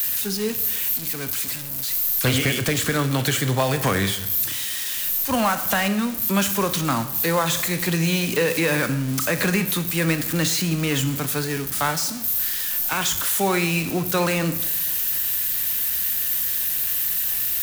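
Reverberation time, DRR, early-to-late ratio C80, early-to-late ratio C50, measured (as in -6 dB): 0.95 s, 9.5 dB, 14.0 dB, 12.0 dB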